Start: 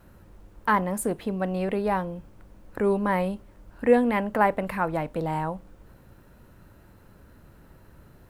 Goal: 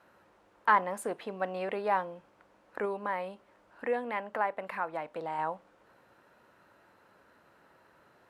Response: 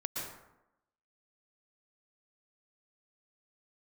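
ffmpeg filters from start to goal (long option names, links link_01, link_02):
-filter_complex "[0:a]highpass=680,aemphasis=mode=reproduction:type=bsi,asettb=1/sr,asplit=3[link_01][link_02][link_03];[link_01]atrim=end=2.854[link_04];[link_02]atrim=start=2.85:end=5.39,asetpts=PTS-STARTPTS,afade=type=in:duration=0.004:curve=qsin,afade=type=out:start_time=2.536:duration=0.004:curve=qsin,acompressor=threshold=-39dB:ratio=1.5[link_05];[link_03]atrim=start=5.386[link_06];[link_04][link_05]acrossfade=duration=0.004:curve1=hsin:curve2=qsin[link_07];[link_07][link_06]acrossfade=duration=0.004:curve1=qsin:curve2=hsin"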